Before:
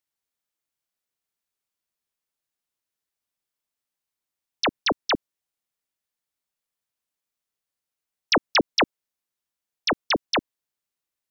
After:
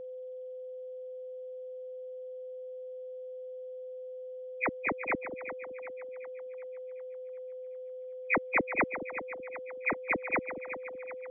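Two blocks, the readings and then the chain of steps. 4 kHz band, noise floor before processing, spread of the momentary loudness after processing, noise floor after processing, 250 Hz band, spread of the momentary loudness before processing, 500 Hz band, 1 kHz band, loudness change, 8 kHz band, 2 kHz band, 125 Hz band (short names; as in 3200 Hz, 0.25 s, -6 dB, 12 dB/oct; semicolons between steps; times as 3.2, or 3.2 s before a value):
under -40 dB, under -85 dBFS, 13 LU, -43 dBFS, -8.0 dB, 6 LU, -2.0 dB, -8.0 dB, -12.0 dB, n/a, -3.0 dB, -8.0 dB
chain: nonlinear frequency compression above 1900 Hz 4:1; split-band echo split 610 Hz, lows 0.188 s, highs 0.376 s, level -10.5 dB; whine 510 Hz -31 dBFS; gain -8.5 dB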